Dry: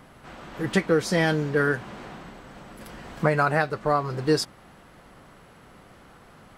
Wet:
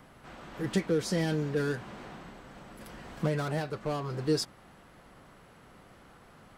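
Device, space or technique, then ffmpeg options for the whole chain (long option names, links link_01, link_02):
one-band saturation: -filter_complex "[0:a]acrossover=split=510|3800[link_01][link_02][link_03];[link_02]asoftclip=type=tanh:threshold=-33dB[link_04];[link_01][link_04][link_03]amix=inputs=3:normalize=0,volume=-4.5dB"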